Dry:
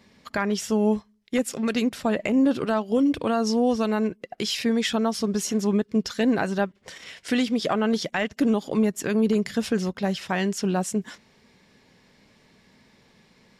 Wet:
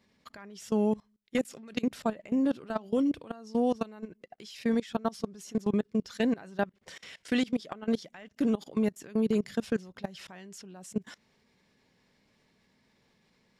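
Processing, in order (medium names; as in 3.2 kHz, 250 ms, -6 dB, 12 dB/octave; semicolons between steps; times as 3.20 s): level held to a coarse grid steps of 22 dB; trim -3 dB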